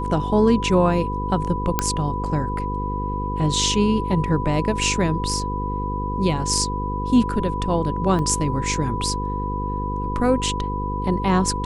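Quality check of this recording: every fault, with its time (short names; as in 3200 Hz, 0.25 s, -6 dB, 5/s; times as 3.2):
buzz 50 Hz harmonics 10 -27 dBFS
tone 990 Hz -27 dBFS
1.79 pop -4 dBFS
8.19 gap 2.1 ms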